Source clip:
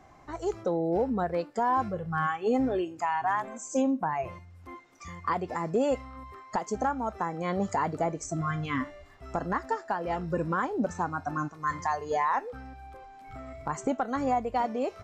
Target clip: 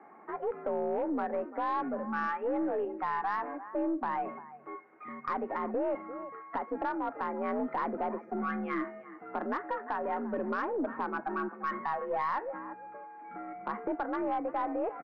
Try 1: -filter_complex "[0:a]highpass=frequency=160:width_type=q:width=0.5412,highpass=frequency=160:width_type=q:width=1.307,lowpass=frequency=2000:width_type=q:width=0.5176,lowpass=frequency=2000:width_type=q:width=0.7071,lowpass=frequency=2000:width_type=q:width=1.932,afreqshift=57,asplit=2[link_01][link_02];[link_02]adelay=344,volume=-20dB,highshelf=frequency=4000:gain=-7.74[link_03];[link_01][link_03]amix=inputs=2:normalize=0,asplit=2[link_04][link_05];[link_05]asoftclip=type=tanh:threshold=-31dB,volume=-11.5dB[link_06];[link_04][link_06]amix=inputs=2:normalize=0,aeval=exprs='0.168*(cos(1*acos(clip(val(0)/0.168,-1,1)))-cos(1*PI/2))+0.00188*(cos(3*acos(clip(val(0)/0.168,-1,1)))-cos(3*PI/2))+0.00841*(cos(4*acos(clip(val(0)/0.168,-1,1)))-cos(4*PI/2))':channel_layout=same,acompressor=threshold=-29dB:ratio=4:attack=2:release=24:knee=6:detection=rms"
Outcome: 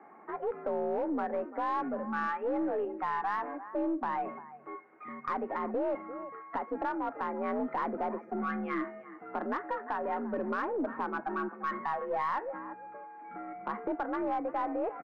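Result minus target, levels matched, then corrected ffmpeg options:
soft clipping: distortion +10 dB
-filter_complex "[0:a]highpass=frequency=160:width_type=q:width=0.5412,highpass=frequency=160:width_type=q:width=1.307,lowpass=frequency=2000:width_type=q:width=0.5176,lowpass=frequency=2000:width_type=q:width=0.7071,lowpass=frequency=2000:width_type=q:width=1.932,afreqshift=57,asplit=2[link_01][link_02];[link_02]adelay=344,volume=-20dB,highshelf=frequency=4000:gain=-7.74[link_03];[link_01][link_03]amix=inputs=2:normalize=0,asplit=2[link_04][link_05];[link_05]asoftclip=type=tanh:threshold=-21.5dB,volume=-11.5dB[link_06];[link_04][link_06]amix=inputs=2:normalize=0,aeval=exprs='0.168*(cos(1*acos(clip(val(0)/0.168,-1,1)))-cos(1*PI/2))+0.00188*(cos(3*acos(clip(val(0)/0.168,-1,1)))-cos(3*PI/2))+0.00841*(cos(4*acos(clip(val(0)/0.168,-1,1)))-cos(4*PI/2))':channel_layout=same,acompressor=threshold=-29dB:ratio=4:attack=2:release=24:knee=6:detection=rms"

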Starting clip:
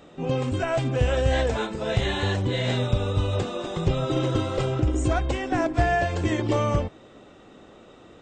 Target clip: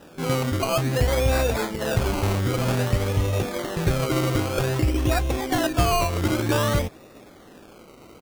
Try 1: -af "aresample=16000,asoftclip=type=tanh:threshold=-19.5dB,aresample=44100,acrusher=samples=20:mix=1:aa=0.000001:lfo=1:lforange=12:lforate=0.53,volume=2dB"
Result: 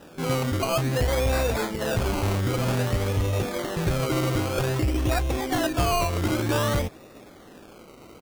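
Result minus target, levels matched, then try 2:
soft clipping: distortion +11 dB
-af "aresample=16000,asoftclip=type=tanh:threshold=-11.5dB,aresample=44100,acrusher=samples=20:mix=1:aa=0.000001:lfo=1:lforange=12:lforate=0.53,volume=2dB"

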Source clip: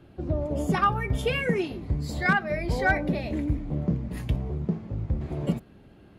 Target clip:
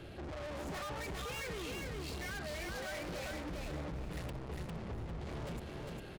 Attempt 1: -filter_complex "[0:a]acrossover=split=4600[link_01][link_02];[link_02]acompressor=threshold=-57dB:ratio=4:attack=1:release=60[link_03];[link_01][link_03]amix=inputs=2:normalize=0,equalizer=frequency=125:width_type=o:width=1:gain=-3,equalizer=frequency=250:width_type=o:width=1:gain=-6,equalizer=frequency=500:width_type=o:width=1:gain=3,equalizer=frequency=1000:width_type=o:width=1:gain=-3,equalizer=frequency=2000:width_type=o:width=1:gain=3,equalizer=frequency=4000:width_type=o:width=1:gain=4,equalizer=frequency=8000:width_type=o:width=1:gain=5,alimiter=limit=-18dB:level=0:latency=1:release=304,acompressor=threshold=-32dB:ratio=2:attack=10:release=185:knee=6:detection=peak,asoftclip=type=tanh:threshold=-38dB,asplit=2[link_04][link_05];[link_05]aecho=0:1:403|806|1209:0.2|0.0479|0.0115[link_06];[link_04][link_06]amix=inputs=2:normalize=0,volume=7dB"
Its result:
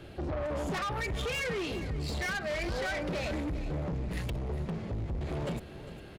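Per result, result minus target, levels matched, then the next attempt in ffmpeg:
echo-to-direct −11 dB; soft clipping: distortion −4 dB
-filter_complex "[0:a]acrossover=split=4600[link_01][link_02];[link_02]acompressor=threshold=-57dB:ratio=4:attack=1:release=60[link_03];[link_01][link_03]amix=inputs=2:normalize=0,equalizer=frequency=125:width_type=o:width=1:gain=-3,equalizer=frequency=250:width_type=o:width=1:gain=-6,equalizer=frequency=500:width_type=o:width=1:gain=3,equalizer=frequency=1000:width_type=o:width=1:gain=-3,equalizer=frequency=2000:width_type=o:width=1:gain=3,equalizer=frequency=4000:width_type=o:width=1:gain=4,equalizer=frequency=8000:width_type=o:width=1:gain=5,alimiter=limit=-18dB:level=0:latency=1:release=304,acompressor=threshold=-32dB:ratio=2:attack=10:release=185:knee=6:detection=peak,asoftclip=type=tanh:threshold=-38dB,asplit=2[link_04][link_05];[link_05]aecho=0:1:403|806|1209:0.708|0.17|0.0408[link_06];[link_04][link_06]amix=inputs=2:normalize=0,volume=7dB"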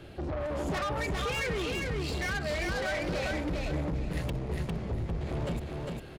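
soft clipping: distortion −4 dB
-filter_complex "[0:a]acrossover=split=4600[link_01][link_02];[link_02]acompressor=threshold=-57dB:ratio=4:attack=1:release=60[link_03];[link_01][link_03]amix=inputs=2:normalize=0,equalizer=frequency=125:width_type=o:width=1:gain=-3,equalizer=frequency=250:width_type=o:width=1:gain=-6,equalizer=frequency=500:width_type=o:width=1:gain=3,equalizer=frequency=1000:width_type=o:width=1:gain=-3,equalizer=frequency=2000:width_type=o:width=1:gain=3,equalizer=frequency=4000:width_type=o:width=1:gain=4,equalizer=frequency=8000:width_type=o:width=1:gain=5,alimiter=limit=-18dB:level=0:latency=1:release=304,acompressor=threshold=-32dB:ratio=2:attack=10:release=185:knee=6:detection=peak,asoftclip=type=tanh:threshold=-49.5dB,asplit=2[link_04][link_05];[link_05]aecho=0:1:403|806|1209:0.708|0.17|0.0408[link_06];[link_04][link_06]amix=inputs=2:normalize=0,volume=7dB"

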